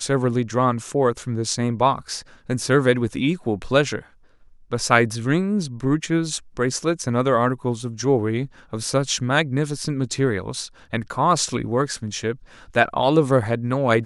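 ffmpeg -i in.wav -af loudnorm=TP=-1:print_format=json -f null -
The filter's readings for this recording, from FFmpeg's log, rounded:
"input_i" : "-21.7",
"input_tp" : "-1.2",
"input_lra" : "2.1",
"input_thresh" : "-31.9",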